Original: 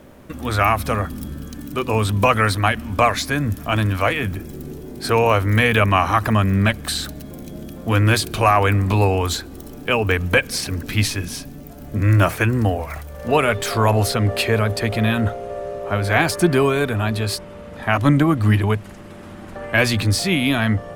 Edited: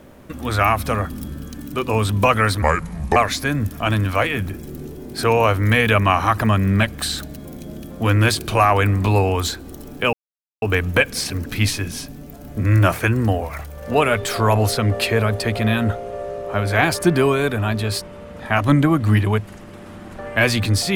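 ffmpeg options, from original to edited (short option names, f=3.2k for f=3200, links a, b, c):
-filter_complex "[0:a]asplit=4[a][b][c][d];[a]atrim=end=2.624[e];[b]atrim=start=2.62:end=3.02,asetpts=PTS-STARTPTS,asetrate=32634,aresample=44100[f];[c]atrim=start=3.016:end=9.99,asetpts=PTS-STARTPTS,afade=t=out:st=6.97:d=0.004:c=hsin,apad=pad_dur=0.49[g];[d]atrim=start=9.99,asetpts=PTS-STARTPTS,afade=t=in:d=0.004:c=hsin[h];[e][f]acrossfade=d=0.004:c1=hsin:c2=hsin[i];[g][h]concat=n=2:v=0:a=1[j];[i][j]acrossfade=d=0.004:c1=hsin:c2=hsin"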